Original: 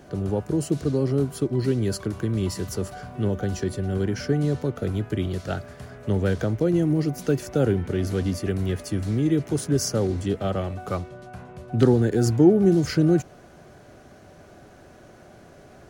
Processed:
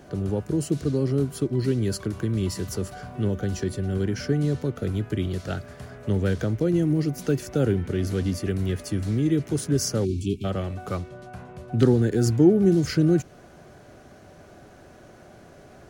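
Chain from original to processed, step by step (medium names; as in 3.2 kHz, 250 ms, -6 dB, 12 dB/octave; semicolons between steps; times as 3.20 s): dynamic bell 780 Hz, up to -5 dB, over -38 dBFS, Q 1.1; spectral selection erased 10.05–10.44 s, 430–2200 Hz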